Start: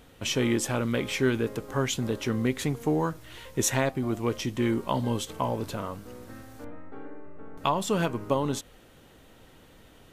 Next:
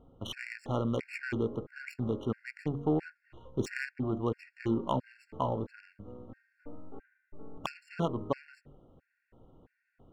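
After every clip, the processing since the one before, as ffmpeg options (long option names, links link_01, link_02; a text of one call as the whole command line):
ffmpeg -i in.wav -af "bandreject=frequency=47.44:width_type=h:width=4,bandreject=frequency=94.88:width_type=h:width=4,bandreject=frequency=142.32:width_type=h:width=4,bandreject=frequency=189.76:width_type=h:width=4,bandreject=frequency=237.2:width_type=h:width=4,bandreject=frequency=284.64:width_type=h:width=4,bandreject=frequency=332.08:width_type=h:width=4,bandreject=frequency=379.52:width_type=h:width=4,bandreject=frequency=426.96:width_type=h:width=4,bandreject=frequency=474.4:width_type=h:width=4,bandreject=frequency=521.84:width_type=h:width=4,bandreject=frequency=569.28:width_type=h:width=4,bandreject=frequency=616.72:width_type=h:width=4,adynamicsmooth=sensitivity=2:basefreq=930,afftfilt=real='re*gt(sin(2*PI*1.5*pts/sr)*(1-2*mod(floor(b*sr/1024/1400),2)),0)':imag='im*gt(sin(2*PI*1.5*pts/sr)*(1-2*mod(floor(b*sr/1024/1400),2)),0)':win_size=1024:overlap=0.75,volume=-2dB" out.wav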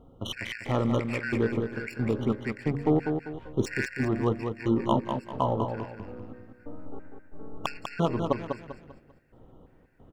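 ffmpeg -i in.wav -af "aecho=1:1:197|394|591|788:0.501|0.175|0.0614|0.0215,volume=5dB" out.wav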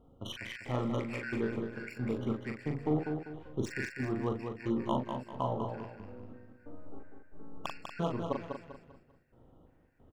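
ffmpeg -i in.wav -filter_complex "[0:a]asplit=2[link_01][link_02];[link_02]adelay=40,volume=-5dB[link_03];[link_01][link_03]amix=inputs=2:normalize=0,volume=-8dB" out.wav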